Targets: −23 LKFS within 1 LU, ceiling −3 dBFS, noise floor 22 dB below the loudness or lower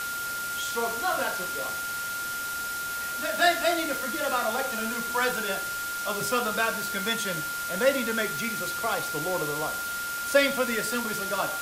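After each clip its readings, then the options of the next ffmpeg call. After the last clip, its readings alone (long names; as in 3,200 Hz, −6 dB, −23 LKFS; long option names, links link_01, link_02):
interfering tone 1,400 Hz; level of the tone −31 dBFS; background noise floor −33 dBFS; target noise floor −50 dBFS; integrated loudness −27.5 LKFS; sample peak −8.0 dBFS; target loudness −23.0 LKFS
→ -af "bandreject=frequency=1400:width=30"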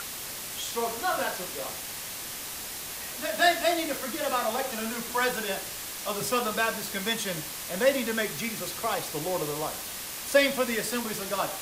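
interfering tone none found; background noise floor −38 dBFS; target noise floor −51 dBFS
→ -af "afftdn=noise_reduction=13:noise_floor=-38"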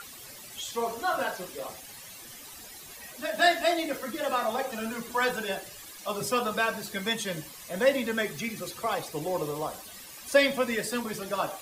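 background noise floor −46 dBFS; target noise floor −52 dBFS
→ -af "afftdn=noise_reduction=6:noise_floor=-46"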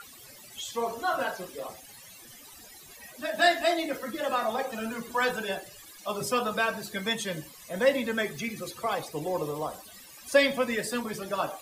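background noise floor −50 dBFS; target noise floor −52 dBFS
→ -af "afftdn=noise_reduction=6:noise_floor=-50"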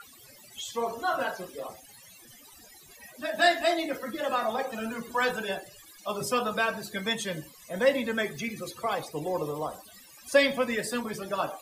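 background noise floor −53 dBFS; integrated loudness −29.5 LKFS; sample peak −8.0 dBFS; target loudness −23.0 LKFS
→ -af "volume=6.5dB,alimiter=limit=-3dB:level=0:latency=1"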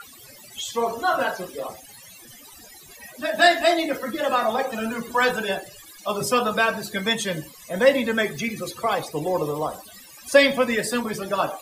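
integrated loudness −23.0 LKFS; sample peak −3.0 dBFS; background noise floor −46 dBFS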